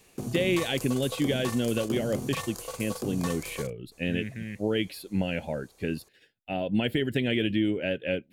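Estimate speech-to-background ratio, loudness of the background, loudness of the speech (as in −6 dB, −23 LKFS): 7.0 dB, −36.5 LKFS, −29.5 LKFS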